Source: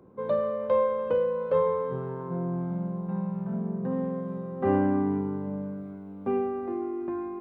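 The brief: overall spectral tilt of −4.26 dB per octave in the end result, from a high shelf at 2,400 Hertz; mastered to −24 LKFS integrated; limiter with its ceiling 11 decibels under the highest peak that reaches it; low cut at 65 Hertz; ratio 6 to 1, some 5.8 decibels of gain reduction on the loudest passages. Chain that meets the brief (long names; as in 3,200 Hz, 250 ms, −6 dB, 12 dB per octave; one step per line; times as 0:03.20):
high-pass filter 65 Hz
high-shelf EQ 2,400 Hz −7.5 dB
downward compressor 6 to 1, threshold −26 dBFS
level +13.5 dB
brickwall limiter −16.5 dBFS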